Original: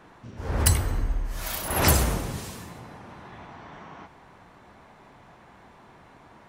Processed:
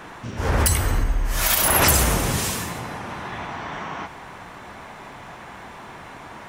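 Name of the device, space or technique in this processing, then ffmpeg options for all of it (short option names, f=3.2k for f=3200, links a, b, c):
mastering chain: -af "equalizer=f=4.3k:t=o:w=0.47:g=-3,acompressor=threshold=-28dB:ratio=2.5,asoftclip=type=tanh:threshold=-12dB,tiltshelf=f=970:g=-3.5,alimiter=level_in=18dB:limit=-1dB:release=50:level=0:latency=1,volume=-5dB"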